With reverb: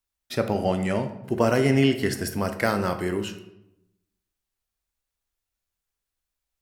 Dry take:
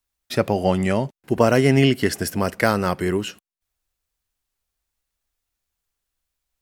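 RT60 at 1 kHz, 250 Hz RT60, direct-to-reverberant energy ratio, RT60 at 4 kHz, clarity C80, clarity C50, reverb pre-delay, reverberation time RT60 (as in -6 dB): 0.85 s, 1.1 s, 7.5 dB, 0.55 s, 13.0 dB, 10.5 dB, 12 ms, 0.90 s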